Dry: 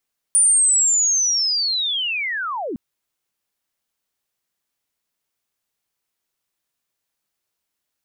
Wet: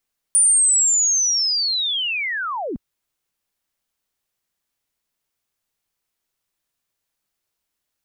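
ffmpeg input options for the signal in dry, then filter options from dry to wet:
-f lavfi -i "aevalsrc='pow(10,(-11-13*t/2.41)/20)*sin(2*PI*(9400*t-9200*t*t/(2*2.41)))':d=2.41:s=44100"
-af "lowshelf=f=68:g=8"

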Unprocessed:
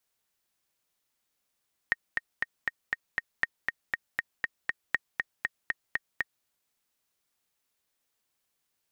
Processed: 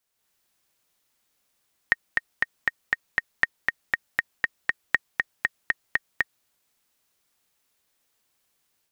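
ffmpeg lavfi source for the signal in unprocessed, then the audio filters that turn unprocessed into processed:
-f lavfi -i "aevalsrc='pow(10,(-11-3.5*gte(mod(t,6*60/238),60/238))/20)*sin(2*PI*1860*mod(t,60/238))*exp(-6.91*mod(t,60/238)/0.03)':d=4.53:s=44100"
-af "dynaudnorm=f=130:g=3:m=7dB"

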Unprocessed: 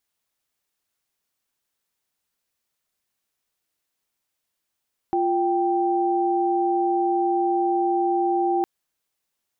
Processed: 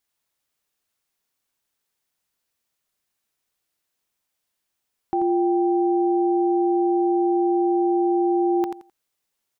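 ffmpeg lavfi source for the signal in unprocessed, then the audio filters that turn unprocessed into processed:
-f lavfi -i "aevalsrc='0.0841*(sin(2*PI*349.23*t)+sin(2*PI*783.99*t))':d=3.51:s=44100"
-af "aecho=1:1:86|172|258:0.447|0.0938|0.0197"

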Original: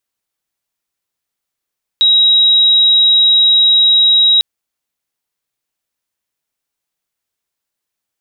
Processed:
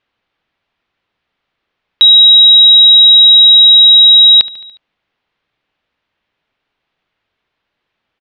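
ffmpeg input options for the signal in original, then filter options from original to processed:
-f lavfi -i "aevalsrc='0.501*sin(2*PI*3830*t)':d=2.4:s=44100"
-af "lowpass=f=3.4k:w=0.5412,lowpass=f=3.4k:w=1.3066,aecho=1:1:72|144|216|288|360:0.0944|0.0548|0.0318|0.0184|0.0107,alimiter=level_in=14.5dB:limit=-1dB:release=50:level=0:latency=1"

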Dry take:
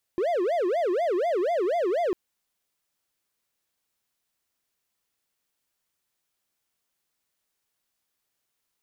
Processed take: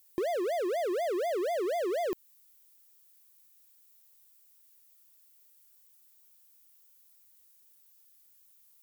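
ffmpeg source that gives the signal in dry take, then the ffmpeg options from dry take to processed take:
-f lavfi -i "aevalsrc='0.1*(1-4*abs(mod((526*t-179/(2*PI*4.1)*sin(2*PI*4.1*t))+0.25,1)-0.5))':d=1.95:s=44100"
-af "aemphasis=mode=production:type=75fm,acompressor=threshold=-28dB:ratio=6"

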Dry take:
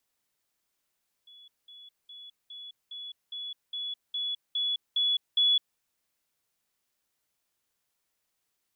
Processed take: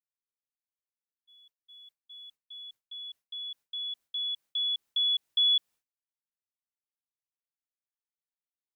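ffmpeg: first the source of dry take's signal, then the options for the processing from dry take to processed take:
-f lavfi -i "aevalsrc='pow(10,(-50+3*floor(t/0.41))/20)*sin(2*PI*3400*t)*clip(min(mod(t,0.41),0.21-mod(t,0.41))/0.005,0,1)':d=4.51:s=44100"
-af "agate=range=-33dB:threshold=-49dB:ratio=3:detection=peak"

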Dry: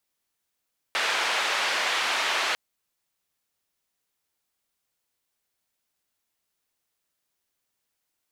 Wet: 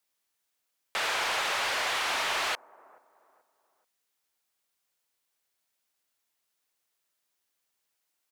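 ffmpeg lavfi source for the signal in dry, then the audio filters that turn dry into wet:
-f lavfi -i "anoisesrc=c=white:d=1.6:r=44100:seed=1,highpass=f=670,lowpass=f=2900,volume=-11.6dB"
-filter_complex "[0:a]lowshelf=f=290:g=-8.5,acrossover=split=1100[a][b];[a]aecho=1:1:431|862|1293:0.1|0.035|0.0123[c];[b]asoftclip=type=tanh:threshold=-28dB[d];[c][d]amix=inputs=2:normalize=0"

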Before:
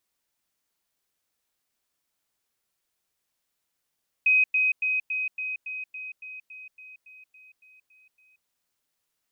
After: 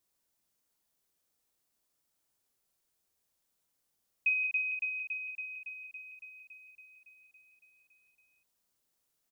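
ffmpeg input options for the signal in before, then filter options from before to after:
-f lavfi -i "aevalsrc='pow(10,(-16.5-3*floor(t/0.28))/20)*sin(2*PI*2520*t)*clip(min(mod(t,0.28),0.18-mod(t,0.28))/0.005,0,1)':d=4.2:s=44100"
-filter_complex "[0:a]equalizer=f=2.2k:t=o:w=2.3:g=-6,asplit=2[a][b];[b]aecho=0:1:29.15|72.89:0.355|0.355[c];[a][c]amix=inputs=2:normalize=0"

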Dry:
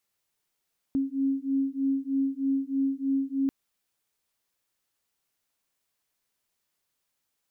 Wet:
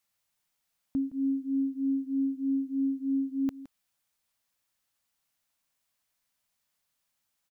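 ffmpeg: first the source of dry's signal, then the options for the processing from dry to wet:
-f lavfi -i "aevalsrc='0.0422*(sin(2*PI*270*t)+sin(2*PI*273.2*t))':d=2.54:s=44100"
-af "equalizer=f=390:w=3.8:g=-13,aecho=1:1:166:0.15"

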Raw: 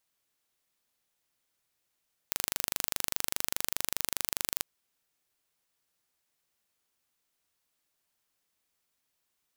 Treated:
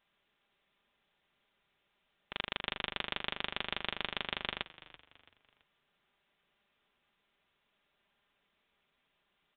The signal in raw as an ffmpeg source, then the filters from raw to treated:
-f lavfi -i "aevalsrc='0.794*eq(mod(n,1771),0)':d=2.29:s=44100"
-filter_complex "[0:a]aresample=8000,aeval=exprs='0.141*sin(PI/2*1.58*val(0)/0.141)':c=same,aresample=44100,aecho=1:1:5:0.43,asplit=4[a][b][c][d];[b]adelay=333,afreqshift=-51,volume=-17.5dB[e];[c]adelay=666,afreqshift=-102,volume=-25.7dB[f];[d]adelay=999,afreqshift=-153,volume=-33.9dB[g];[a][e][f][g]amix=inputs=4:normalize=0"

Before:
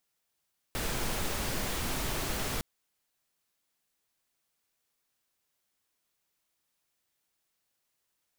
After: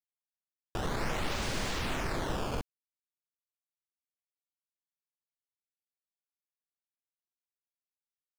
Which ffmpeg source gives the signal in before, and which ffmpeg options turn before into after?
-f lavfi -i "anoisesrc=c=pink:a=0.122:d=1.86:r=44100:seed=1"
-filter_complex "[0:a]acrusher=samples=13:mix=1:aa=0.000001:lfo=1:lforange=20.8:lforate=0.48,acrossover=split=8500[a][b];[b]acompressor=threshold=-55dB:ratio=4:attack=1:release=60[c];[a][c]amix=inputs=2:normalize=0,acrusher=bits=8:mix=0:aa=0.000001"

